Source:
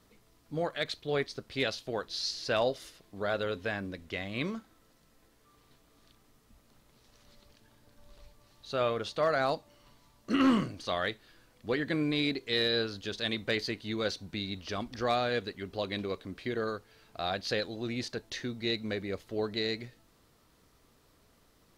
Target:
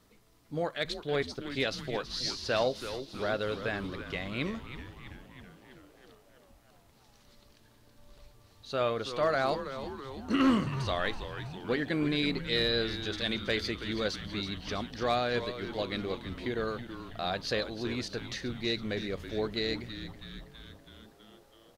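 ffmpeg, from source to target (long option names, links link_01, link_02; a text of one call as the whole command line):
ffmpeg -i in.wav -filter_complex "[0:a]asplit=9[link_01][link_02][link_03][link_04][link_05][link_06][link_07][link_08][link_09];[link_02]adelay=326,afreqshift=-130,volume=-10.5dB[link_10];[link_03]adelay=652,afreqshift=-260,volume=-14.2dB[link_11];[link_04]adelay=978,afreqshift=-390,volume=-18dB[link_12];[link_05]adelay=1304,afreqshift=-520,volume=-21.7dB[link_13];[link_06]adelay=1630,afreqshift=-650,volume=-25.5dB[link_14];[link_07]adelay=1956,afreqshift=-780,volume=-29.2dB[link_15];[link_08]adelay=2282,afreqshift=-910,volume=-33dB[link_16];[link_09]adelay=2608,afreqshift=-1040,volume=-36.7dB[link_17];[link_01][link_10][link_11][link_12][link_13][link_14][link_15][link_16][link_17]amix=inputs=9:normalize=0" out.wav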